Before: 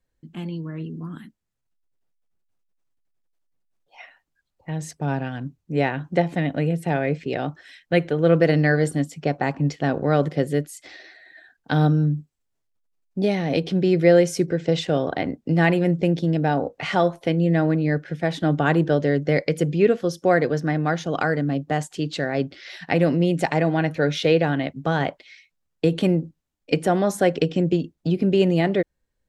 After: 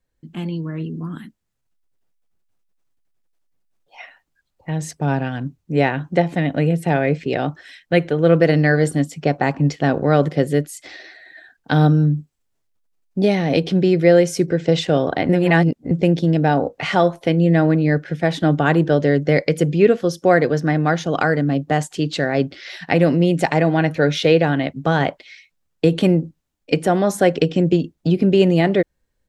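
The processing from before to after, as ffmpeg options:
ffmpeg -i in.wav -filter_complex "[0:a]asplit=3[link_01][link_02][link_03];[link_01]atrim=end=15.292[link_04];[link_02]atrim=start=15.288:end=15.912,asetpts=PTS-STARTPTS,areverse[link_05];[link_03]atrim=start=15.908[link_06];[link_04][link_05]acrossfade=duration=0.004:curve1=hsin:curve2=hsin[link_07];[link_07][link_06]acrossfade=duration=0.004:curve1=hsin:curve2=hsin,dynaudnorm=framelen=150:gausssize=3:maxgain=4dB,volume=1dB" out.wav

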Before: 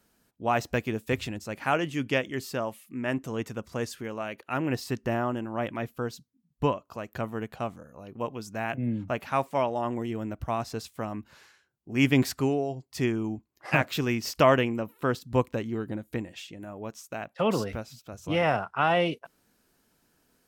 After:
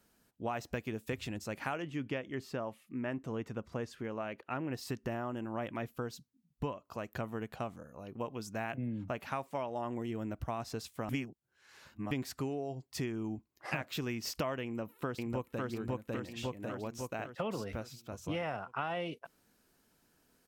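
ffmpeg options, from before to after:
ffmpeg -i in.wav -filter_complex "[0:a]asettb=1/sr,asplit=3[link_01][link_02][link_03];[link_01]atrim=end=1.824[link_04];[link_02]atrim=start=1.82:end=4.73,asetpts=PTS-STARTPTS,afade=type=in:duration=0.004:curve=qsin,afade=type=out:start_time=2.906:duration=0.004:curve=qsin,lowpass=frequency=2200:poles=1[link_05];[link_03]atrim=start=4.726[link_06];[link_04][link_05]acrossfade=duration=0.004:curve1=hsin:curve2=qsin[link_07];[link_07][link_06]acrossfade=duration=0.004:curve1=qsin:curve2=hsin,asplit=2[link_08][link_09];[link_09]afade=type=in:start_time=14.63:duration=0.01,afade=type=out:start_time=15.64:duration=0.01,aecho=0:1:550|1100|1650|2200|2750|3300:0.944061|0.424827|0.191172|0.0860275|0.0387124|0.0174206[link_10];[link_08][link_10]amix=inputs=2:normalize=0,asplit=3[link_11][link_12][link_13];[link_11]atrim=end=11.092[link_14];[link_12]atrim=start=11.088:end=12.112,asetpts=PTS-STARTPTS,areverse[link_15];[link_13]atrim=start=12.108[link_16];[link_14][link_15]acrossfade=duration=0.004:curve1=hsin:curve2=hsin[link_17];[link_17][link_16]acrossfade=duration=0.004:curve1=hsin:curve2=hsin,acompressor=threshold=-31dB:ratio=6,volume=-2.5dB" out.wav

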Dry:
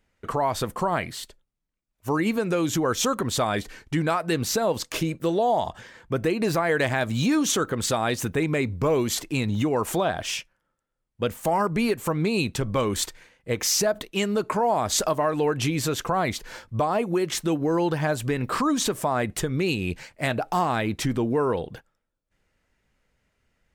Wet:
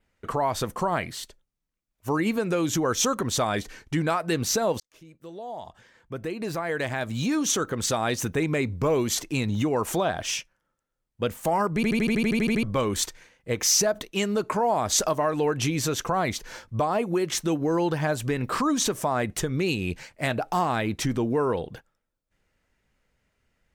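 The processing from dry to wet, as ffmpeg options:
ffmpeg -i in.wav -filter_complex "[0:a]asplit=13[link_01][link_02][link_03][link_04][link_05][link_06][link_07][link_08][link_09][link_10][link_11][link_12][link_13];[link_01]atrim=end=4.8,asetpts=PTS-STARTPTS,afade=type=out:start_time=4.796:duration=0.004:curve=hsin[link_14];[link_02]atrim=start=4.8:end=11.832,asetpts=PTS-STARTPTS,afade=type=in:duration=3.34[link_15];[link_03]atrim=start=11.748:end=11.832[link_16];[link_04]atrim=start=11.748:end=11.832[link_17];[link_05]atrim=start=11.748:end=11.832[link_18];[link_06]atrim=start=11.748:end=11.832[link_19];[link_07]atrim=start=11.748:end=11.832[link_20];[link_08]atrim=start=11.748:end=11.832[link_21];[link_09]atrim=start=11.748:end=11.832[link_22];[link_10]atrim=start=11.748:end=11.832[link_23];[link_11]atrim=start=11.748:end=11.832[link_24];[link_12]atrim=start=11.748:end=11.832[link_25];[link_13]atrim=start=12.628[link_26];[link_14][link_15]concat=n=2:v=0:a=1[link_27];[link_27][link_16]acrossfade=duration=0.004:curve1=hsin:curve2=hsin[link_28];[link_28][link_17]acrossfade=duration=0.004:curve1=hsin:curve2=hsin[link_29];[link_29][link_18]acrossfade=duration=0.004:curve1=hsin:curve2=hsin[link_30];[link_30][link_19]acrossfade=duration=0.004:curve1=hsin:curve2=hsin[link_31];[link_31][link_20]acrossfade=duration=0.004:curve1=hsin:curve2=hsin[link_32];[link_32][link_21]acrossfade=duration=0.004:curve1=hsin:curve2=hsin[link_33];[link_33][link_22]acrossfade=duration=0.004:curve1=hsin:curve2=hsin[link_34];[link_34][link_23]acrossfade=duration=0.004:curve1=hsin:curve2=hsin[link_35];[link_35][link_24]acrossfade=duration=0.004:curve1=hsin:curve2=hsin[link_36];[link_36][link_25]acrossfade=duration=0.004:curve1=hsin:curve2=hsin[link_37];[link_37][link_26]acrossfade=duration=0.004:curve1=hsin:curve2=hsin,adynamicequalizer=threshold=0.00501:dfrequency=6000:dqfactor=4.5:tfrequency=6000:tqfactor=4.5:attack=5:release=100:ratio=0.375:range=3:mode=boostabove:tftype=bell,volume=-1dB" out.wav

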